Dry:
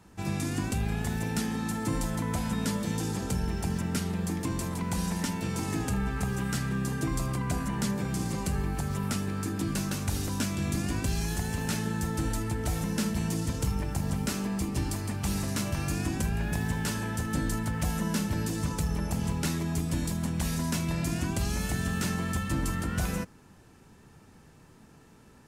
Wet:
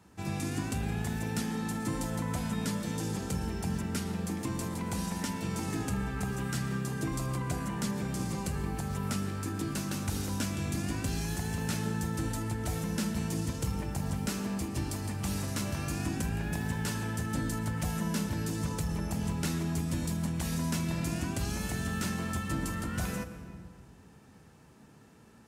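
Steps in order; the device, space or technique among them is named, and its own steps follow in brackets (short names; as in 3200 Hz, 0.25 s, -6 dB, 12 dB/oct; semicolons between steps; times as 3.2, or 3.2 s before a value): compressed reverb return (on a send at -4.5 dB: reverb RT60 1.4 s, pre-delay 0.105 s + compressor, threshold -32 dBFS, peak gain reduction 9 dB); on the sum: HPF 57 Hz; gain -3 dB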